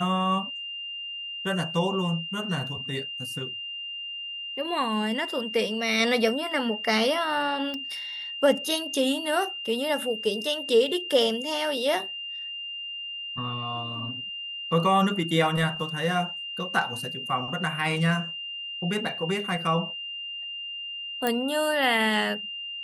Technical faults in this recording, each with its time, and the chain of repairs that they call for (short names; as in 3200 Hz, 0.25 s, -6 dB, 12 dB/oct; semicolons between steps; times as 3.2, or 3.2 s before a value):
tone 2800 Hz -33 dBFS
7.74 pop -21 dBFS
21.27 pop -11 dBFS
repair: de-click; notch 2800 Hz, Q 30